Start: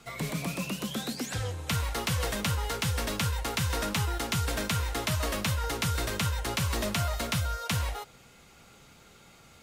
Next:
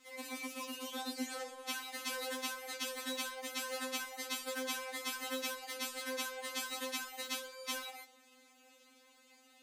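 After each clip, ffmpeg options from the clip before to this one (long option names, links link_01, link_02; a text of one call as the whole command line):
ffmpeg -i in.wav -af "highpass=frequency=220:poles=1,afftfilt=real='re*3.46*eq(mod(b,12),0)':imag='im*3.46*eq(mod(b,12),0)':win_size=2048:overlap=0.75,volume=-4.5dB" out.wav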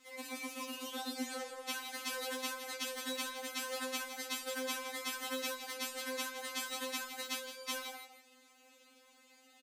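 ffmpeg -i in.wav -af "aecho=1:1:165:0.299" out.wav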